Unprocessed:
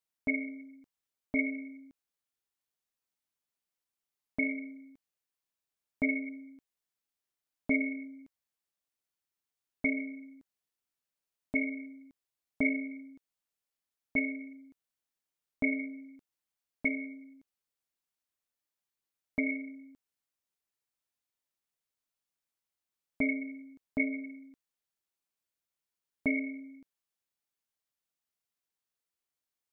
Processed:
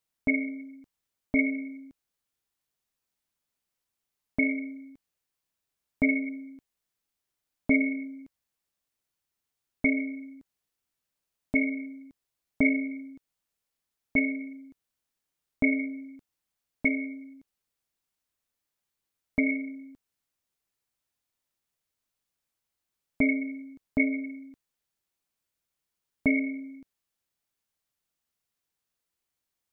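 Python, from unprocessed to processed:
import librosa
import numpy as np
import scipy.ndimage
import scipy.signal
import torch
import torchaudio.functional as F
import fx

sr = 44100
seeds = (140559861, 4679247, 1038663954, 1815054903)

y = fx.low_shelf(x, sr, hz=180.0, db=6.0)
y = F.gain(torch.from_numpy(y), 4.5).numpy()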